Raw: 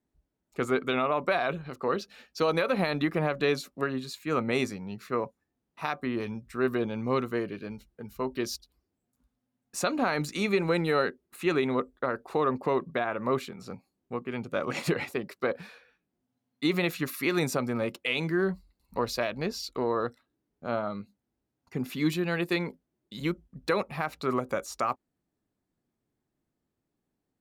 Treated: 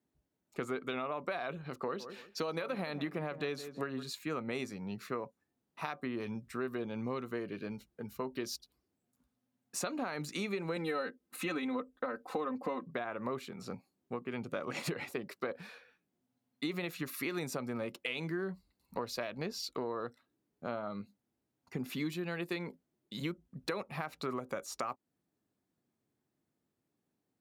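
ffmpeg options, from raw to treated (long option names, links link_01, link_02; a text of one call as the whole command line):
ffmpeg -i in.wav -filter_complex "[0:a]asettb=1/sr,asplit=3[link_01][link_02][link_03];[link_01]atrim=end=1.824[link_04];[link_02]atrim=start=1.82:end=4.03,asetpts=PTS-STARTPTS,afade=type=in:duration=0.004:curve=qsin,afade=type=out:start_time=2.206:duration=0.004:curve=qsin,asplit=2[link_05][link_06];[link_06]adelay=163,lowpass=frequency=1600:poles=1,volume=-15dB,asplit=2[link_07][link_08];[link_08]adelay=163,lowpass=frequency=1600:poles=1,volume=0.22[link_09];[link_05][link_07][link_09]amix=inputs=3:normalize=0,atrim=end_sample=97461[link_10];[link_03]atrim=start=4.026[link_11];[link_04][link_10]acrossfade=duration=0.004:curve1=hsin:curve2=qsin[link_12];[link_12][link_11]acrossfade=duration=0.004:curve1=qsin:curve2=hsin,asettb=1/sr,asplit=3[link_13][link_14][link_15];[link_13]atrim=end=10.764[link_16];[link_14]atrim=start=10.76:end=12.87,asetpts=PTS-STARTPTS,afade=type=in:duration=0.004:curve=qsin,afade=type=out:start_time=2.106:duration=0.004:curve=qsin,aecho=1:1:3.9:0.89,atrim=end_sample=93051[link_17];[link_15]atrim=start=12.866[link_18];[link_16][link_17]acrossfade=duration=0.004:curve1=hsin:curve2=qsin[link_19];[link_19][link_18]acrossfade=duration=0.004:curve1=qsin:curve2=hsin,highpass=95,acompressor=threshold=-34dB:ratio=4,volume=-1dB" out.wav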